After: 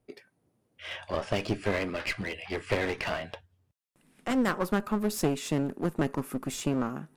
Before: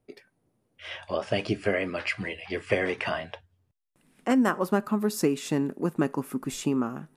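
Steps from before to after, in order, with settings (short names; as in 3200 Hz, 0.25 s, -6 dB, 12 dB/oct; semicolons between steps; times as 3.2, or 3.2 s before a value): one-sided clip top -33.5 dBFS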